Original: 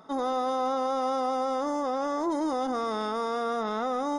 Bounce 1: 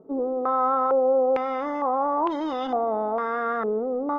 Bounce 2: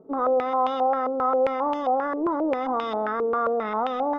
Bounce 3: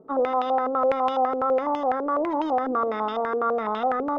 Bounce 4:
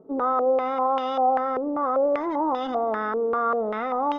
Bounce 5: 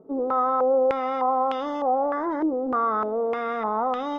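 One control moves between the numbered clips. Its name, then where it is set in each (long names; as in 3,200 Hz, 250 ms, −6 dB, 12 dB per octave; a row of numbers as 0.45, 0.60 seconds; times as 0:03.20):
low-pass on a step sequencer, speed: 2.2, 7.5, 12, 5.1, 3.3 Hertz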